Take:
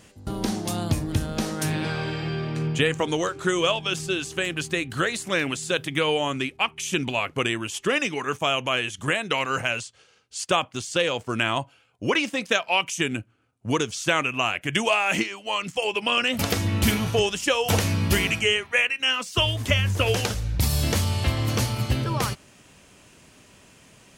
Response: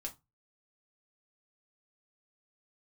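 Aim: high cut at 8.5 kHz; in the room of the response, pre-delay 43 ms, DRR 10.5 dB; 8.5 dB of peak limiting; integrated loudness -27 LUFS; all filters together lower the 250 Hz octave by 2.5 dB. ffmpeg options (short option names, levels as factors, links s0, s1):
-filter_complex "[0:a]lowpass=8500,equalizer=f=250:t=o:g=-3.5,alimiter=limit=0.188:level=0:latency=1,asplit=2[s0][s1];[1:a]atrim=start_sample=2205,adelay=43[s2];[s1][s2]afir=irnorm=-1:irlink=0,volume=0.376[s3];[s0][s3]amix=inputs=2:normalize=0,volume=0.944"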